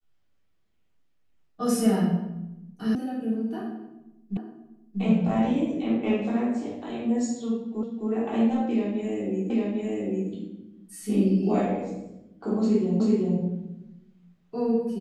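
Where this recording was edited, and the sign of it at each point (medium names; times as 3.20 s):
2.95 s: sound stops dead
4.37 s: repeat of the last 0.64 s
7.83 s: repeat of the last 0.26 s
9.50 s: repeat of the last 0.8 s
13.00 s: repeat of the last 0.38 s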